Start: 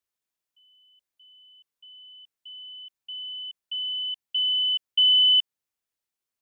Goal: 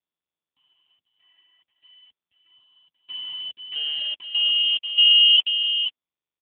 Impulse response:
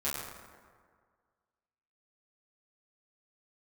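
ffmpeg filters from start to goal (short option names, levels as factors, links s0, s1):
-filter_complex "[0:a]aemphasis=mode=reproduction:type=50fm,asettb=1/sr,asplit=3[s0][s1][s2];[s0]atrim=end=2.104[s3];[s1]atrim=start=2.1:end=2.99,asetpts=PTS-STARTPTS,afade=t=in:d=0.004:c=qsin,afade=t=out:st=0.886:d=0.004:c=qsin,agate=range=0.112:threshold=0.00708:ratio=16:detection=peak[s4];[s2]atrim=start=2.986[s5];[s3][s4]acrossfade=d=0.004:c1=hsin:c2=qsin[s6];[s6][s5]acrossfade=d=0.004:c1=qsin:c2=hsin,equalizer=f=2800:t=o:w=0.26:g=5,asplit=3[s7][s8][s9];[s7]afade=t=out:st=3.74:d=0.02[s10];[s8]aeval=exprs='val(0)*sin(2*PI*150*n/s)':c=same,afade=t=in:st=3.74:d=0.02,afade=t=out:st=5.36:d=0.02[s11];[s9]afade=t=in:st=5.36:d=0.02[s12];[s10][s11][s12]amix=inputs=3:normalize=0,acrusher=bits=7:dc=4:mix=0:aa=0.000001,aecho=1:1:485:0.398,volume=2.37" -ar 8000 -c:a libopencore_amrnb -b:a 5150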